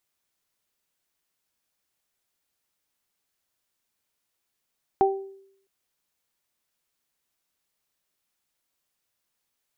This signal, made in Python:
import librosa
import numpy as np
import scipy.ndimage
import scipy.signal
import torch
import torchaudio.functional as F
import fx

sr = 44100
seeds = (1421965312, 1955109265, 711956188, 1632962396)

y = fx.additive(sr, length_s=0.66, hz=389.0, level_db=-17.0, upper_db=(2,), decay_s=0.71, upper_decays_s=(0.33,))